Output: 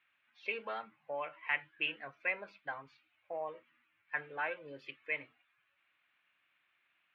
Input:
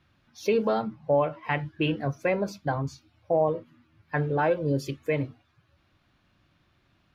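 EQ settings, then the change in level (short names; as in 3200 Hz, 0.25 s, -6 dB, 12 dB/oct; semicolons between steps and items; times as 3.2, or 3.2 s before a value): band-pass 2400 Hz, Q 2.1; air absorption 490 m; tilt +2 dB/oct; +4.0 dB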